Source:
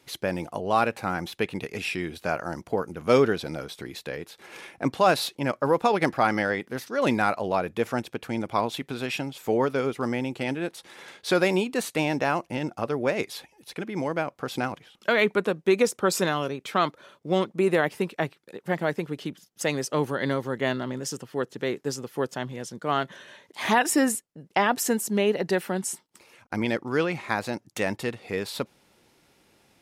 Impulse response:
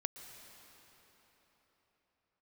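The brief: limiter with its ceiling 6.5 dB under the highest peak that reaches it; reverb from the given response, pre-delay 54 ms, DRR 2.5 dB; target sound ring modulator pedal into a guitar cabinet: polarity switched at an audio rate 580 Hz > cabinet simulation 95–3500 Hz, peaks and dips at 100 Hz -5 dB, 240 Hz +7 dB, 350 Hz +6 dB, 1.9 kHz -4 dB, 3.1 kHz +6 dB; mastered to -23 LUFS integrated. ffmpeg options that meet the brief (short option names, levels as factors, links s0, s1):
-filter_complex "[0:a]alimiter=limit=0.2:level=0:latency=1,asplit=2[s0][s1];[1:a]atrim=start_sample=2205,adelay=54[s2];[s1][s2]afir=irnorm=-1:irlink=0,volume=0.841[s3];[s0][s3]amix=inputs=2:normalize=0,aeval=exprs='val(0)*sgn(sin(2*PI*580*n/s))':c=same,highpass=95,equalizer=f=100:t=q:w=4:g=-5,equalizer=f=240:t=q:w=4:g=7,equalizer=f=350:t=q:w=4:g=6,equalizer=f=1900:t=q:w=4:g=-4,equalizer=f=3100:t=q:w=4:g=6,lowpass=f=3500:w=0.5412,lowpass=f=3500:w=1.3066,volume=1.33"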